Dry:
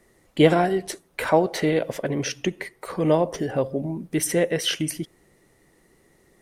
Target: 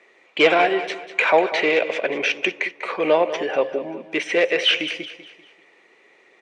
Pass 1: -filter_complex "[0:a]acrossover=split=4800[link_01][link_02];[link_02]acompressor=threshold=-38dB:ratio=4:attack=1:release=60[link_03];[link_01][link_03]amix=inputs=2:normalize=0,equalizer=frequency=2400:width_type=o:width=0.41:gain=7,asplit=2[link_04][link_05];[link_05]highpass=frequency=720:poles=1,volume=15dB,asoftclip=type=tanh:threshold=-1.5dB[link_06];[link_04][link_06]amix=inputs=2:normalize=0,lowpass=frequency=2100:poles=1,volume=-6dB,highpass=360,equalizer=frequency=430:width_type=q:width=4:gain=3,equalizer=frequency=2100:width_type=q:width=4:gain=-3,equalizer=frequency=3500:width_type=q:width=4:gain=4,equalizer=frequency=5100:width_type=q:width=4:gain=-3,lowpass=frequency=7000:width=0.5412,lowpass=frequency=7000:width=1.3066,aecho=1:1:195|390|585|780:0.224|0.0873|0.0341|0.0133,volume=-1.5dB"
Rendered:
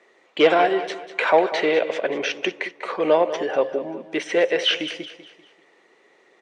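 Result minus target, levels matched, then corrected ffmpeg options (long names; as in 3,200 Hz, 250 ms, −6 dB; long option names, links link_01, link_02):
2,000 Hz band −3.0 dB
-filter_complex "[0:a]acrossover=split=4800[link_01][link_02];[link_02]acompressor=threshold=-38dB:ratio=4:attack=1:release=60[link_03];[link_01][link_03]amix=inputs=2:normalize=0,equalizer=frequency=2400:width_type=o:width=0.41:gain=17,asplit=2[link_04][link_05];[link_05]highpass=frequency=720:poles=1,volume=15dB,asoftclip=type=tanh:threshold=-1.5dB[link_06];[link_04][link_06]amix=inputs=2:normalize=0,lowpass=frequency=2100:poles=1,volume=-6dB,highpass=360,equalizer=frequency=430:width_type=q:width=4:gain=3,equalizer=frequency=2100:width_type=q:width=4:gain=-3,equalizer=frequency=3500:width_type=q:width=4:gain=4,equalizer=frequency=5100:width_type=q:width=4:gain=-3,lowpass=frequency=7000:width=0.5412,lowpass=frequency=7000:width=1.3066,aecho=1:1:195|390|585|780:0.224|0.0873|0.0341|0.0133,volume=-1.5dB"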